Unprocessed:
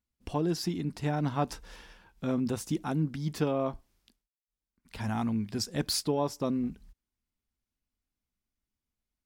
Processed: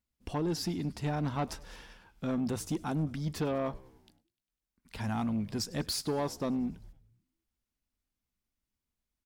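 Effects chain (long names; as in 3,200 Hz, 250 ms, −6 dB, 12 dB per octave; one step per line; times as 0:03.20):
de-essing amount 55%
soft clipping −25 dBFS, distortion −15 dB
on a send: echo with shifted repeats 100 ms, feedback 63%, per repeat −73 Hz, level −22.5 dB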